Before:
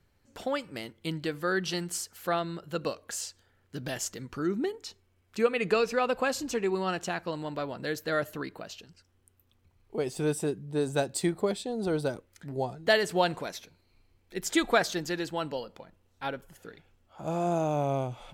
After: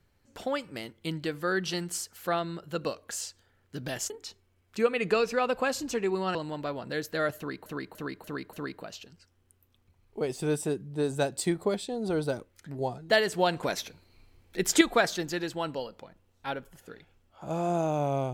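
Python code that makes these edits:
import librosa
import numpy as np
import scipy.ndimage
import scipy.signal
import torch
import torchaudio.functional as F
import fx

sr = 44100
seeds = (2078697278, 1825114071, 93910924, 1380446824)

y = fx.edit(x, sr, fx.cut(start_s=4.1, length_s=0.6),
    fx.cut(start_s=6.95, length_s=0.33),
    fx.repeat(start_s=8.3, length_s=0.29, count=5),
    fx.clip_gain(start_s=13.4, length_s=1.18, db=6.5), tone=tone)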